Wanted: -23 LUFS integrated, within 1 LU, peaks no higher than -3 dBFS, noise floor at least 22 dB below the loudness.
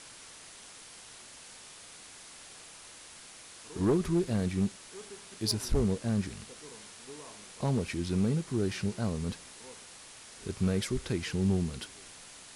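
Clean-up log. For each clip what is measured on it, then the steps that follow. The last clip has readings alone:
clipped samples 0.4%; clipping level -20.5 dBFS; noise floor -51 dBFS; noise floor target -54 dBFS; loudness -32.0 LUFS; peak level -20.5 dBFS; loudness target -23.0 LUFS
-> clip repair -20.5 dBFS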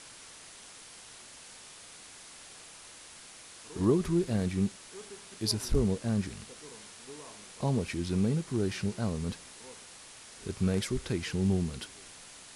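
clipped samples 0.0%; noise floor -51 dBFS; noise floor target -54 dBFS
-> noise reduction 6 dB, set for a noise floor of -51 dBFS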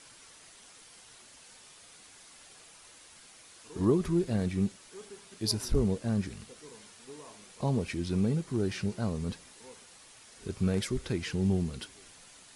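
noise floor -55 dBFS; loudness -31.5 LUFS; peak level -14.5 dBFS; loudness target -23.0 LUFS
-> trim +8.5 dB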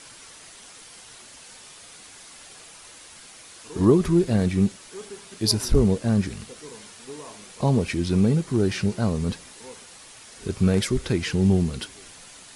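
loudness -23.0 LUFS; peak level -6.0 dBFS; noise floor -46 dBFS

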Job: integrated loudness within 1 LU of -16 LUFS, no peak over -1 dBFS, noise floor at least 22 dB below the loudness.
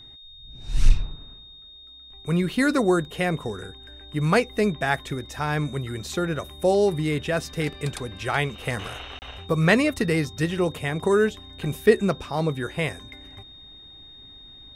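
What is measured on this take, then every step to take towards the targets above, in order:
dropouts 1; longest dropout 29 ms; steady tone 3.7 kHz; tone level -44 dBFS; loudness -24.5 LUFS; peak level -4.5 dBFS; loudness target -16.0 LUFS
-> interpolate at 9.19 s, 29 ms; band-stop 3.7 kHz, Q 30; trim +8.5 dB; peak limiter -1 dBFS

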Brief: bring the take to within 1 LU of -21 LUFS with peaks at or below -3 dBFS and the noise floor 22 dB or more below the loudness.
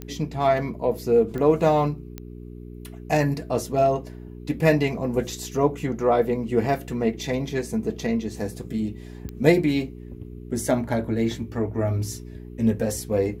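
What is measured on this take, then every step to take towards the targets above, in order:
clicks found 4; hum 60 Hz; highest harmonic 420 Hz; hum level -36 dBFS; loudness -24.0 LUFS; peak level -3.0 dBFS; loudness target -21.0 LUFS
-> de-click; de-hum 60 Hz, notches 7; trim +3 dB; peak limiter -3 dBFS

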